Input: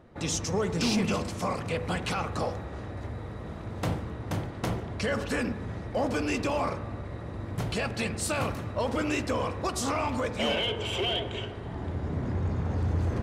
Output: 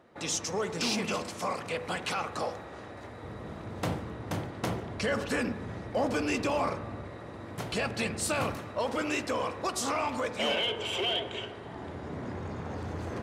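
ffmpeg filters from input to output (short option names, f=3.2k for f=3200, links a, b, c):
-af "asetnsamples=n=441:p=0,asendcmd='3.23 highpass f 140;7.1 highpass f 320;7.73 highpass f 140;8.57 highpass f 350',highpass=f=440:p=1"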